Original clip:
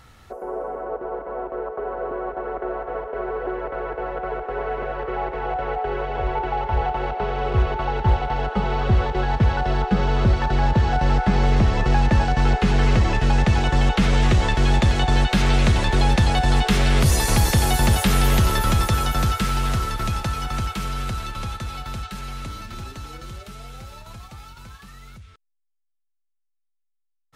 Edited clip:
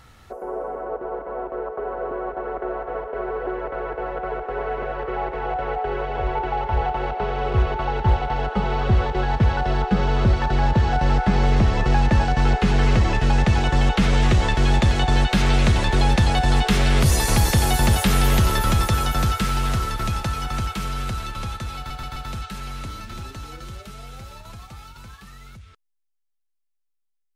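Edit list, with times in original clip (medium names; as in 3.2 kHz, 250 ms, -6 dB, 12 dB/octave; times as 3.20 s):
21.77 s: stutter 0.13 s, 4 plays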